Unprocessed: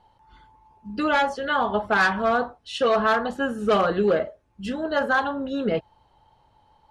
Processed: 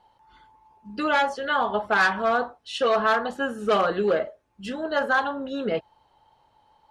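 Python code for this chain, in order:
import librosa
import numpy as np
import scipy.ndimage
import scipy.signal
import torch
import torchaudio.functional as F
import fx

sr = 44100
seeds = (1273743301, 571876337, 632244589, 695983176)

y = fx.low_shelf(x, sr, hz=200.0, db=-10.0)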